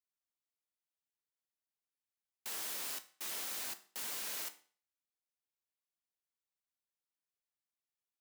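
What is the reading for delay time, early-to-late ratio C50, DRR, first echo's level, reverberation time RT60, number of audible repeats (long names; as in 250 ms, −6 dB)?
no echo audible, 16.0 dB, 9.0 dB, no echo audible, 0.45 s, no echo audible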